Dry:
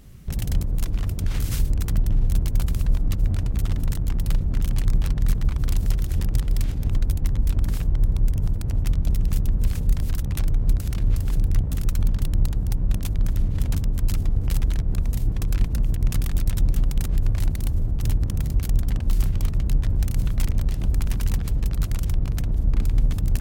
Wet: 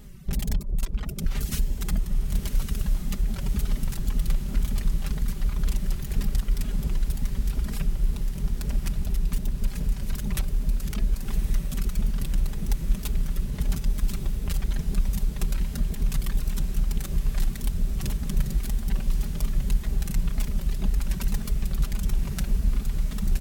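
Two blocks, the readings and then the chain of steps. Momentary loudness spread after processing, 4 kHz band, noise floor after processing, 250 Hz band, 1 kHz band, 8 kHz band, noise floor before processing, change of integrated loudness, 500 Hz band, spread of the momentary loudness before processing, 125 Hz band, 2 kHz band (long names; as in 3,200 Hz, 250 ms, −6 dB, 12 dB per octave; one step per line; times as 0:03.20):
2 LU, −0.5 dB, −33 dBFS, −1.5 dB, −1.5 dB, 0.0 dB, −27 dBFS, −4.5 dB, −2.5 dB, 2 LU, −6.5 dB, −0.5 dB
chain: comb filter 5 ms, depth 80%
reverb reduction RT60 1.7 s
downward compressor, threshold −20 dBFS, peak gain reduction 10 dB
tape wow and flutter 87 cents
feedback delay with all-pass diffusion 1,155 ms, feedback 69%, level −7 dB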